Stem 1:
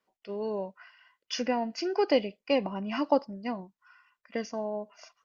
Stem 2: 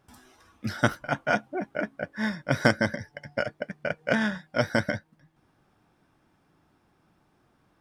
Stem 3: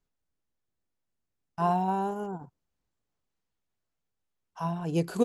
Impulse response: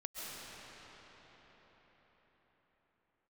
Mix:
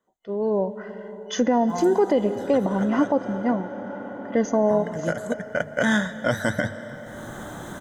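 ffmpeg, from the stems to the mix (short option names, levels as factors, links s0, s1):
-filter_complex "[0:a]tiltshelf=f=1100:g=5,volume=1.19,asplit=3[s0][s1][s2];[s1]volume=0.211[s3];[1:a]highshelf=f=4900:g=5,acompressor=mode=upward:threshold=0.0316:ratio=2.5,bandreject=f=50:t=h:w=6,bandreject=f=100:t=h:w=6,bandreject=f=150:t=h:w=6,adelay=1700,volume=0.891,asplit=3[s4][s5][s6];[s4]atrim=end=3.53,asetpts=PTS-STARTPTS,afade=t=out:st=3.526:d=0.004:c=hsin[s7];[s5]atrim=start=3.53:end=4.69,asetpts=PTS-STARTPTS,volume=0[s8];[s6]atrim=start=4.69,asetpts=PTS-STARTPTS,afade=t=in:d=0.004:c=hsin[s9];[s7][s8][s9]concat=n=3:v=0:a=1,asplit=2[s10][s11];[s11]volume=0.15[s12];[2:a]adelay=100,volume=0.266[s13];[s2]apad=whole_len=419182[s14];[s10][s14]sidechaincompress=threshold=0.00631:ratio=3:attack=16:release=784[s15];[3:a]atrim=start_sample=2205[s16];[s3][s12]amix=inputs=2:normalize=0[s17];[s17][s16]afir=irnorm=-1:irlink=0[s18];[s0][s15][s13][s18]amix=inputs=4:normalize=0,superequalizer=12b=0.251:14b=0.282:15b=2,dynaudnorm=f=170:g=9:m=3.55,alimiter=limit=0.299:level=0:latency=1:release=66"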